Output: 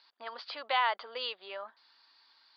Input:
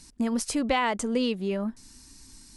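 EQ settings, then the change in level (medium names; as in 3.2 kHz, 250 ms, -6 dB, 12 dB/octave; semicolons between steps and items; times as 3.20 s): high-pass 610 Hz 24 dB/octave; dynamic bell 3.7 kHz, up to +3 dB, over -45 dBFS, Q 0.71; rippled Chebyshev low-pass 4.8 kHz, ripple 6 dB; 0.0 dB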